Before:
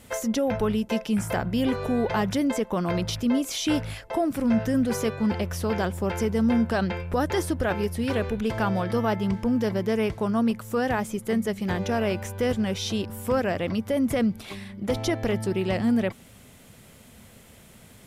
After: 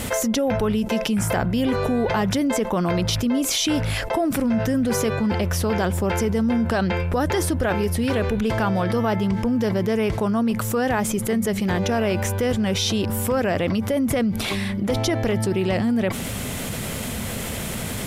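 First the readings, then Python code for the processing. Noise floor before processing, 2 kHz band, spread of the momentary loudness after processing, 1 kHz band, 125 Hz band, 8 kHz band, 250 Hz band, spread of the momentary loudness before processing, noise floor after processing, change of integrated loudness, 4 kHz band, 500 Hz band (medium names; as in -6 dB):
-51 dBFS, +5.0 dB, 4 LU, +4.0 dB, +6.0 dB, +9.5 dB, +3.0 dB, 4 LU, -29 dBFS, +3.5 dB, +7.0 dB, +3.5 dB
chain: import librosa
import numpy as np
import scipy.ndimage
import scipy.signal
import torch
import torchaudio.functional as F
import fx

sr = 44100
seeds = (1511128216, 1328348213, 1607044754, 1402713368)

y = fx.env_flatten(x, sr, amount_pct=70)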